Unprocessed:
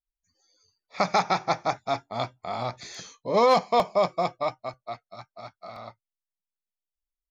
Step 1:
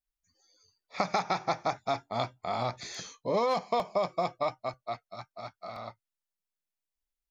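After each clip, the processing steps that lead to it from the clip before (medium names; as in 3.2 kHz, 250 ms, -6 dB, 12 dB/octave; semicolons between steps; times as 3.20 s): compression 6:1, threshold -25 dBFS, peak gain reduction 9.5 dB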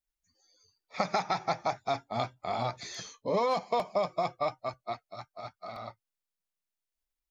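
coarse spectral quantiser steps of 15 dB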